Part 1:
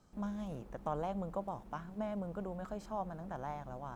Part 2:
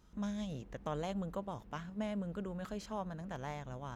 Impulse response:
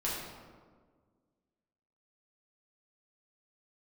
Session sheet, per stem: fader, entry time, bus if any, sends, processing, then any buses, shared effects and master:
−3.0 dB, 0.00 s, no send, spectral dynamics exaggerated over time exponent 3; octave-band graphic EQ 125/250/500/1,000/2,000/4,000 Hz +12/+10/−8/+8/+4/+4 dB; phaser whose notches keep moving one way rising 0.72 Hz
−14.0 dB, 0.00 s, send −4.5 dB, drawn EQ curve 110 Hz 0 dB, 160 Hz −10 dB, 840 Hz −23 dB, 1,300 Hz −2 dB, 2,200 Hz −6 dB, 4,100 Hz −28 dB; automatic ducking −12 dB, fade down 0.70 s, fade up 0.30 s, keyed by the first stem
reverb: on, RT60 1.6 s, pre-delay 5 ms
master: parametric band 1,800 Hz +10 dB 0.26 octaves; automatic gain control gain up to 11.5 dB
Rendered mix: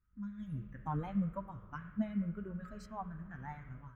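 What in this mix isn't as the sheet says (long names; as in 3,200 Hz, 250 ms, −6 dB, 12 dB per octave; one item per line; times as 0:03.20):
stem 1 −3.0 dB → −11.5 dB
master: missing parametric band 1,800 Hz +10 dB 0.26 octaves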